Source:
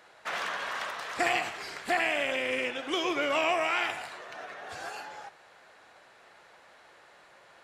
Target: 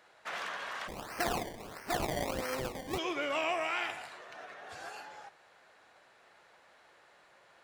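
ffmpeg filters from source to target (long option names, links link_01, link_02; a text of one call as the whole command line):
ffmpeg -i in.wav -filter_complex "[0:a]asplit=3[link_01][link_02][link_03];[link_01]afade=type=out:start_time=0.87:duration=0.02[link_04];[link_02]acrusher=samples=23:mix=1:aa=0.000001:lfo=1:lforange=23:lforate=1.5,afade=type=in:start_time=0.87:duration=0.02,afade=type=out:start_time=2.97:duration=0.02[link_05];[link_03]afade=type=in:start_time=2.97:duration=0.02[link_06];[link_04][link_05][link_06]amix=inputs=3:normalize=0,volume=-5.5dB" out.wav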